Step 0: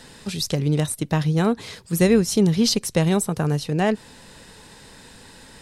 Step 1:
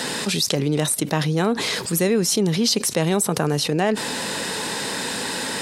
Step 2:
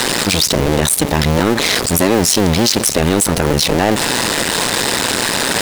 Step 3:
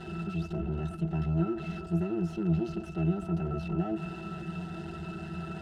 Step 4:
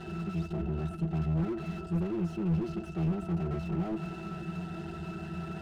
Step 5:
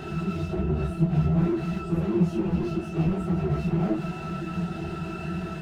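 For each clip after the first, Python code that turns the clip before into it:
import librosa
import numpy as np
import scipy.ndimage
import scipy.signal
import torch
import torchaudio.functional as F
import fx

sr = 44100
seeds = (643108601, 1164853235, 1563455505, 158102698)

y1 = scipy.signal.sosfilt(scipy.signal.butter(2, 220.0, 'highpass', fs=sr, output='sos'), x)
y1 = fx.env_flatten(y1, sr, amount_pct=70)
y1 = y1 * 10.0 ** (-2.5 / 20.0)
y2 = fx.cycle_switch(y1, sr, every=2, mode='muted')
y2 = fx.power_curve(y2, sr, exponent=0.5)
y2 = y2 * 10.0 ** (2.5 / 20.0)
y3 = fx.lower_of_two(y2, sr, delay_ms=5.2)
y3 = fx.octave_resonator(y3, sr, note='E', decay_s=0.14)
y3 = y3 * 10.0 ** (-6.5 / 20.0)
y4 = fx.slew_limit(y3, sr, full_power_hz=11.0)
y5 = fx.phase_scramble(y4, sr, seeds[0], window_ms=100)
y5 = y5 * 10.0 ** (7.0 / 20.0)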